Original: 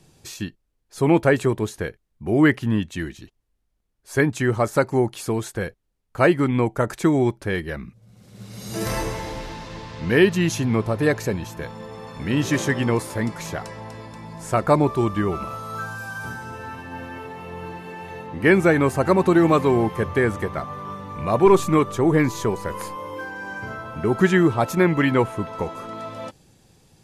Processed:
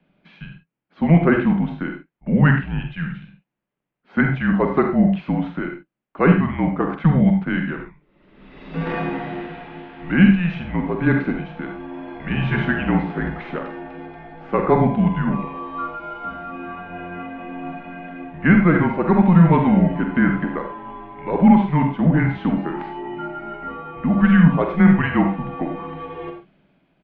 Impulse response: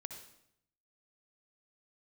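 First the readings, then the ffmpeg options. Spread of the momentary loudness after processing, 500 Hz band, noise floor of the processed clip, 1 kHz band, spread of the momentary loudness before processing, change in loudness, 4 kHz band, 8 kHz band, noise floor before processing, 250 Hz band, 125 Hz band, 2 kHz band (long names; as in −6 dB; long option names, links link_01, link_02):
18 LU, −4.0 dB, −66 dBFS, +1.0 dB, 18 LU, +2.5 dB, −5.0 dB, below −40 dB, −70 dBFS, +5.0 dB, +5.0 dB, +1.0 dB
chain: -filter_complex "[0:a]highpass=frequency=190:width_type=q:width=0.5412,highpass=frequency=190:width_type=q:width=1.307,lowpass=frequency=3100:width_type=q:width=0.5176,lowpass=frequency=3100:width_type=q:width=0.7071,lowpass=frequency=3100:width_type=q:width=1.932,afreqshift=-170,lowshelf=frequency=130:width_type=q:width=3:gain=-7,asplit=2[link_01][link_02];[link_02]adelay=46,volume=-8dB[link_03];[link_01][link_03]amix=inputs=2:normalize=0[link_04];[1:a]atrim=start_sample=2205,afade=type=out:start_time=0.15:duration=0.01,atrim=end_sample=7056[link_05];[link_04][link_05]afir=irnorm=-1:irlink=0,dynaudnorm=framelen=150:gausssize=9:maxgain=6.5dB"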